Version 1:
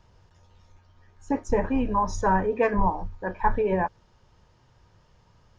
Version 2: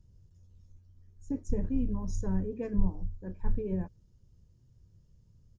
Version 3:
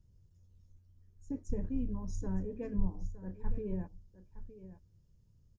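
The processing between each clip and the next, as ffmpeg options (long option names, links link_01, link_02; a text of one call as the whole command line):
ffmpeg -i in.wav -af "firequalizer=gain_entry='entry(110,0);entry(820,-28);entry(7000,-7)':delay=0.05:min_phase=1" out.wav
ffmpeg -i in.wav -af "aecho=1:1:914:0.2,volume=-5dB" out.wav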